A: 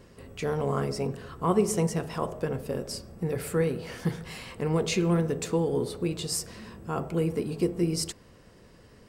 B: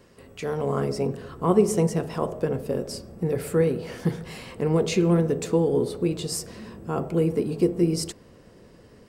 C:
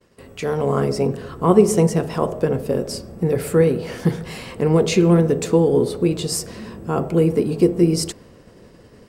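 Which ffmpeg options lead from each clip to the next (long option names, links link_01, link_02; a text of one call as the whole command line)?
ffmpeg -i in.wav -filter_complex "[0:a]lowshelf=frequency=150:gain=-7.5,acrossover=split=640[link_01][link_02];[link_01]dynaudnorm=framelen=430:gausssize=3:maxgain=7dB[link_03];[link_03][link_02]amix=inputs=2:normalize=0" out.wav
ffmpeg -i in.wav -af "agate=range=-33dB:threshold=-48dB:ratio=3:detection=peak,volume=6dB" out.wav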